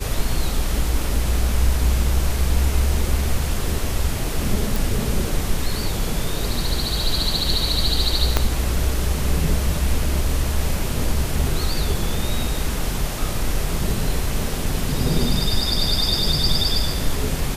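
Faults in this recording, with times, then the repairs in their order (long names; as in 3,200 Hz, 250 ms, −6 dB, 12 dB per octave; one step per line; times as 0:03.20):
0:04.76: click
0:08.37: click −2 dBFS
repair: click removal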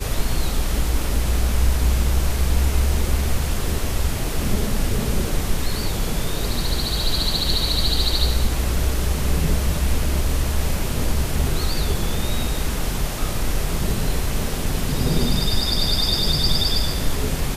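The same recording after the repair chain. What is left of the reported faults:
0:08.37: click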